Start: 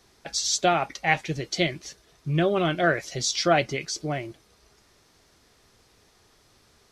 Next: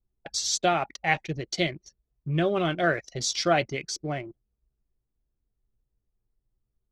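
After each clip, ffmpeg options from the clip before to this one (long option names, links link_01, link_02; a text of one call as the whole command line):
ffmpeg -i in.wav -af "anlmdn=3.98,volume=-2dB" out.wav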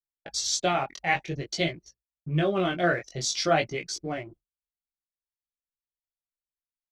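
ffmpeg -i in.wav -af "flanger=delay=17:depth=5.9:speed=0.51,agate=range=-33dB:threshold=-49dB:ratio=3:detection=peak,volume=2.5dB" out.wav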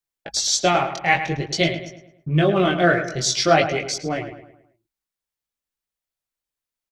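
ffmpeg -i in.wav -filter_complex "[0:a]asplit=2[link_01][link_02];[link_02]adelay=107,lowpass=frequency=3000:poles=1,volume=-9.5dB,asplit=2[link_03][link_04];[link_04]adelay=107,lowpass=frequency=3000:poles=1,volume=0.45,asplit=2[link_05][link_06];[link_06]adelay=107,lowpass=frequency=3000:poles=1,volume=0.45,asplit=2[link_07][link_08];[link_08]adelay=107,lowpass=frequency=3000:poles=1,volume=0.45,asplit=2[link_09][link_10];[link_10]adelay=107,lowpass=frequency=3000:poles=1,volume=0.45[link_11];[link_01][link_03][link_05][link_07][link_09][link_11]amix=inputs=6:normalize=0,volume=7dB" out.wav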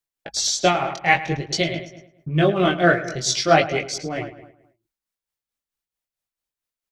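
ffmpeg -i in.wav -af "tremolo=f=4.5:d=0.52,volume=1.5dB" out.wav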